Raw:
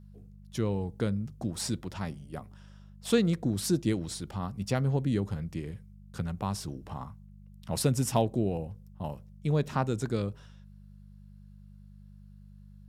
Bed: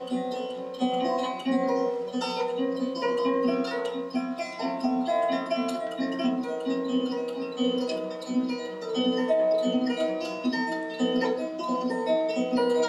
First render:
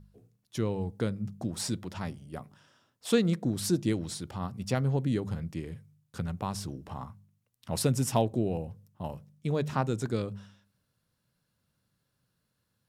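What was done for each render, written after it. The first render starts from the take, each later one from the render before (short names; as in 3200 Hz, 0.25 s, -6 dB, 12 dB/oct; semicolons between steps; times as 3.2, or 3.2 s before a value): de-hum 50 Hz, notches 4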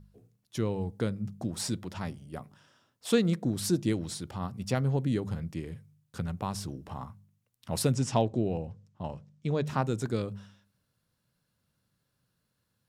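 7.94–9.67 LPF 7400 Hz 24 dB/oct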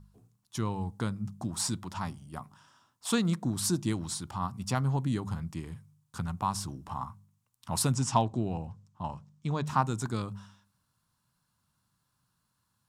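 ten-band EQ 500 Hz -11 dB, 1000 Hz +11 dB, 2000 Hz -4 dB, 8000 Hz +5 dB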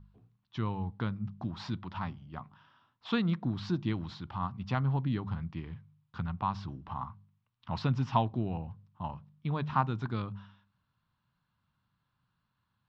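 inverse Chebyshev low-pass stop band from 8400 Hz, stop band 50 dB; bell 450 Hz -3.5 dB 2.1 oct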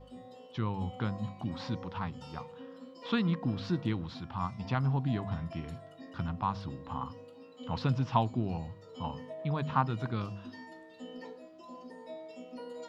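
add bed -20 dB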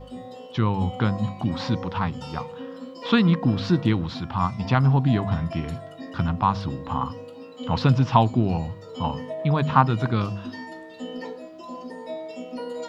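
gain +11 dB; limiter -2 dBFS, peak gain reduction 2 dB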